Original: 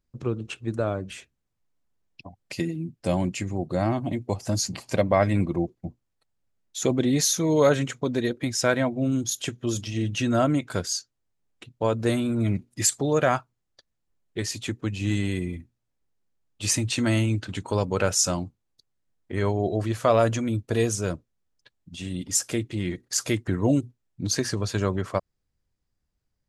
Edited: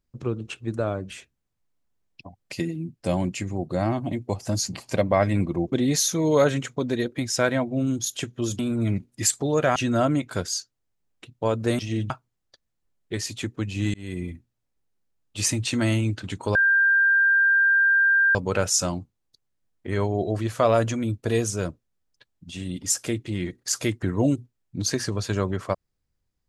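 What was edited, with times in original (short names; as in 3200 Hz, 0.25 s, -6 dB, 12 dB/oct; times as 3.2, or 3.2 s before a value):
5.72–6.97 cut
9.84–10.15 swap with 12.18–13.35
15.19–15.48 fade in
17.8 add tone 1590 Hz -15.5 dBFS 1.80 s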